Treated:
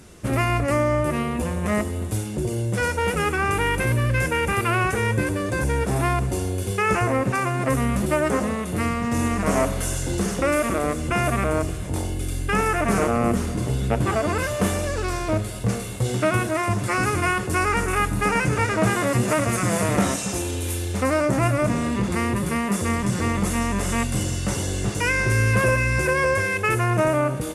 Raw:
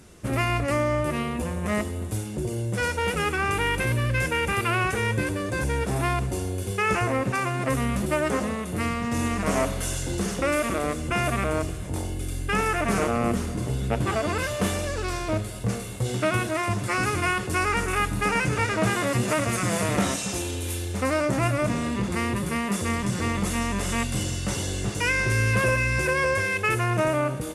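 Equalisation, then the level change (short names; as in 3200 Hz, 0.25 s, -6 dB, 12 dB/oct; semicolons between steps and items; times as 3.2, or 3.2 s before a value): dynamic EQ 3600 Hz, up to -5 dB, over -40 dBFS, Q 0.94; +3.5 dB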